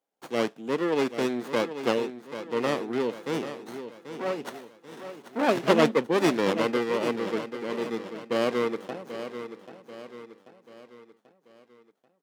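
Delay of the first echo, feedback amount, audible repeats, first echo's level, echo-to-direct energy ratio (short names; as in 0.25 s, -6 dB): 0.787 s, 47%, 4, -11.0 dB, -10.0 dB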